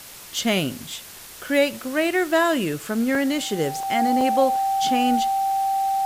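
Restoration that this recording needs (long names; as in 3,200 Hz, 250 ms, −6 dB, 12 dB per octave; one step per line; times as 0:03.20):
notch filter 780 Hz, Q 30
repair the gap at 0:03.15/0:03.83/0:04.21, 1.8 ms
broadband denoise 27 dB, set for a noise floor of −41 dBFS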